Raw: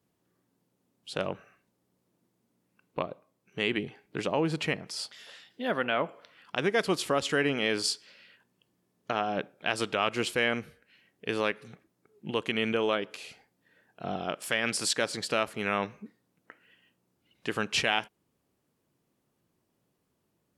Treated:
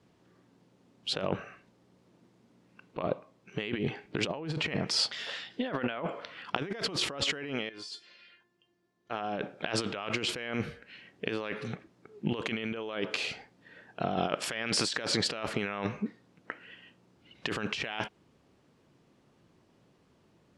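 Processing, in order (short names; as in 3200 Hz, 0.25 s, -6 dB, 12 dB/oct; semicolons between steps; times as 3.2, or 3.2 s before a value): LPF 5200 Hz 12 dB/oct; negative-ratio compressor -38 dBFS, ratio -1; 7.69–9.11 resonator 350 Hz, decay 0.2 s, harmonics all, mix 90%; gain +4.5 dB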